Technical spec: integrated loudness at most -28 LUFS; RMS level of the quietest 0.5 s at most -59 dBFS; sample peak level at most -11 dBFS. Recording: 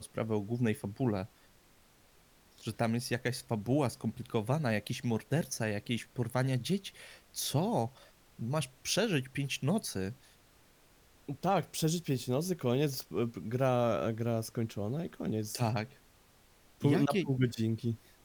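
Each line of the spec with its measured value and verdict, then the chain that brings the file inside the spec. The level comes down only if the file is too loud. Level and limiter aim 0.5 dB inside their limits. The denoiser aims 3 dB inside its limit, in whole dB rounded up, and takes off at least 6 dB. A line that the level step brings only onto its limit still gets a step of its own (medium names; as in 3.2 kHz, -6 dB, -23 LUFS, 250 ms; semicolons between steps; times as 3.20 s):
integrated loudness -33.5 LUFS: pass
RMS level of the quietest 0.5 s -63 dBFS: pass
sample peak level -15.5 dBFS: pass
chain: none needed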